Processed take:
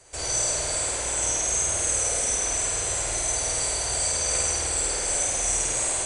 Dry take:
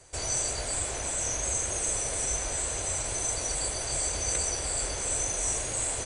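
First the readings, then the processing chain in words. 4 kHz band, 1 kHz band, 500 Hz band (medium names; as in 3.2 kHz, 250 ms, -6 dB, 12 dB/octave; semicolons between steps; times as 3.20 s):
+5.5 dB, +4.5 dB, +4.0 dB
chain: bass shelf 380 Hz -5 dB; on a send: flutter echo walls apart 8.8 m, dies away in 1.4 s; on the sum: trim +1.5 dB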